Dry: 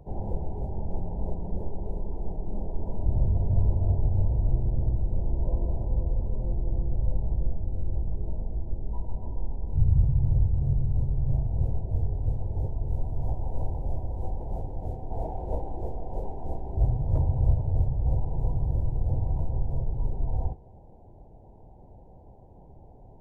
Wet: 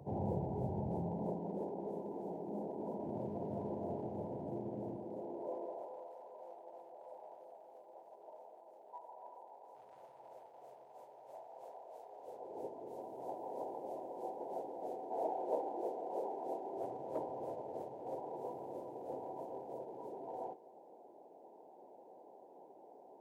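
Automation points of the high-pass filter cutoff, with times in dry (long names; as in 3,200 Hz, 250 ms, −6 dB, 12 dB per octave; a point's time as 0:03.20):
high-pass filter 24 dB per octave
0:00.92 110 Hz
0:01.54 220 Hz
0:04.93 220 Hz
0:06.11 630 Hz
0:12.08 630 Hz
0:12.61 330 Hz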